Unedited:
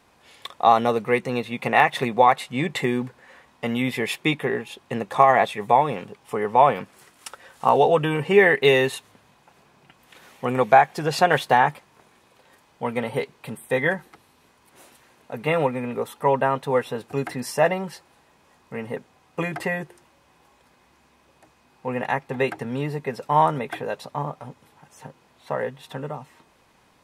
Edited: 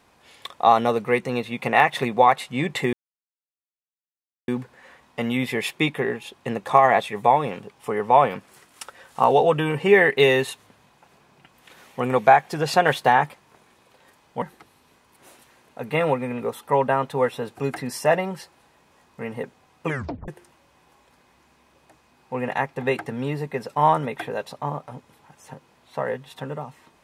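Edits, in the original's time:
0:02.93: splice in silence 1.55 s
0:12.87–0:13.95: remove
0:19.40: tape stop 0.41 s

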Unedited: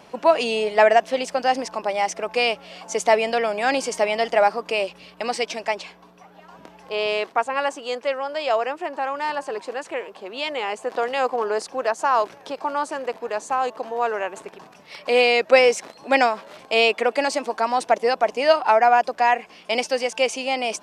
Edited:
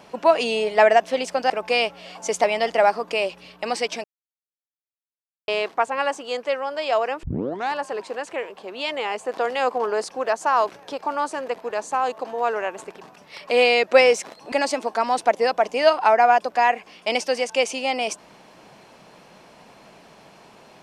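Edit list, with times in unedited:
0:01.50–0:02.16: remove
0:03.10–0:04.02: remove
0:05.62–0:07.06: silence
0:08.81: tape start 0.50 s
0:16.10–0:17.15: remove

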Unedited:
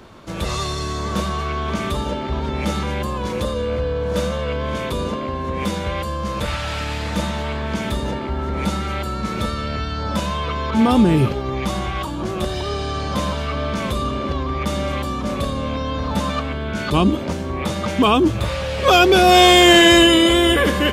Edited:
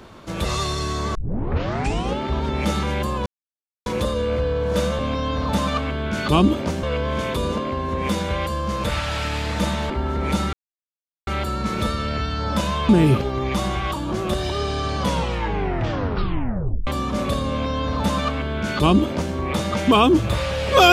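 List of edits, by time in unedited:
0:01.15: tape start 1.04 s
0:03.26: splice in silence 0.60 s
0:07.46–0:08.23: remove
0:08.86: splice in silence 0.74 s
0:10.48–0:11.00: remove
0:13.09: tape stop 1.89 s
0:15.61–0:17.45: duplicate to 0:04.39

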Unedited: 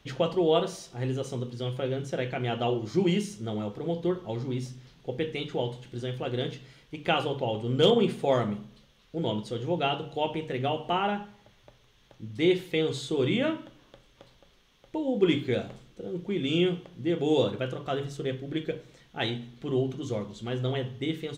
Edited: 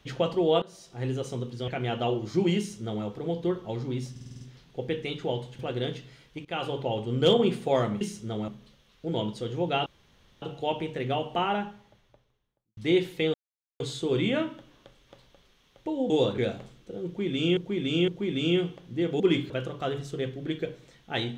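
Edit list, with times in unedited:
0:00.62–0:01.06: fade in, from −21.5 dB
0:01.68–0:02.28: remove
0:03.18–0:03.65: duplicate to 0:08.58
0:04.71: stutter 0.05 s, 7 plays
0:05.89–0:06.16: remove
0:07.02–0:07.46: fade in equal-power, from −18 dB
0:09.96: splice in room tone 0.56 s
0:11.11–0:12.31: fade out and dull
0:12.88: splice in silence 0.46 s
0:15.18–0:15.48: swap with 0:17.28–0:17.56
0:16.16–0:16.67: repeat, 3 plays

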